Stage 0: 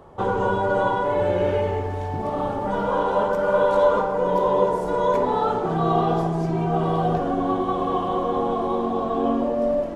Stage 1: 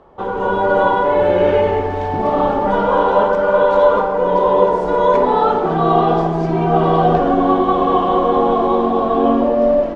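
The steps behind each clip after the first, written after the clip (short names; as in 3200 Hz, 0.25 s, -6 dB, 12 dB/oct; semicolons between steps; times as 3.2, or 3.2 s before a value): LPF 4400 Hz 12 dB/oct; bell 110 Hz -10 dB 0.96 oct; AGC gain up to 11.5 dB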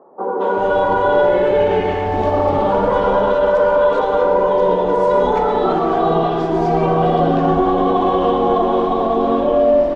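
limiter -8.5 dBFS, peak gain reduction 6.5 dB; three bands offset in time mids, highs, lows 0.22/0.39 s, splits 210/1200 Hz; on a send at -9 dB: reverb, pre-delay 0.111 s; on the sum: gain +2.5 dB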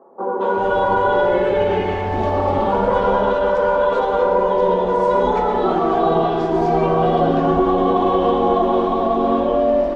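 notch comb 150 Hz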